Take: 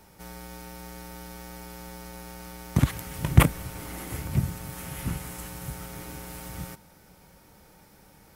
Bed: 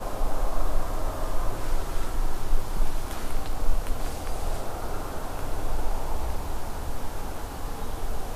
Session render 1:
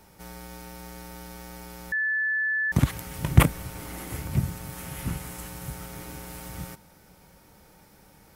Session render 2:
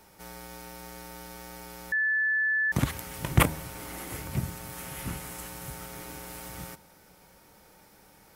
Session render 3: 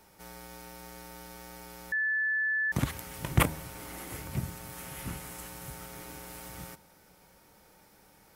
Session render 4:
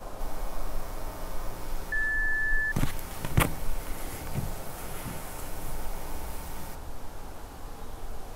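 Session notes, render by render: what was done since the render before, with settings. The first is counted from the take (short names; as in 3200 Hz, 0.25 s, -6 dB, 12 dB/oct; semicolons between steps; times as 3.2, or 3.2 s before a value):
1.92–2.72 bleep 1740 Hz -23 dBFS
tone controls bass -6 dB, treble 0 dB; de-hum 78.78 Hz, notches 13
gain -3 dB
add bed -8 dB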